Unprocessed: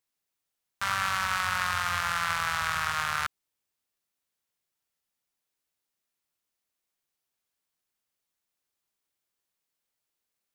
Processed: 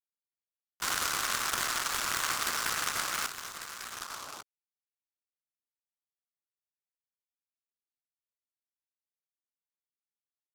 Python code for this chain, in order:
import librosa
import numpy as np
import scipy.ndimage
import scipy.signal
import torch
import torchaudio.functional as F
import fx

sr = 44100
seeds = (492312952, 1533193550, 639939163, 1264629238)

p1 = fx.lpc_vocoder(x, sr, seeds[0], excitation='whisper', order=10)
p2 = fx.backlash(p1, sr, play_db=-26.0)
p3 = p2 + fx.echo_single(p2, sr, ms=1146, db=-10.0, dry=0)
p4 = fx.filter_sweep_bandpass(p3, sr, from_hz=2100.0, to_hz=710.0, start_s=3.84, end_s=4.38, q=1.1)
p5 = fx.noise_mod_delay(p4, sr, seeds[1], noise_hz=4700.0, depth_ms=0.1)
y = p5 * 10.0 ** (3.5 / 20.0)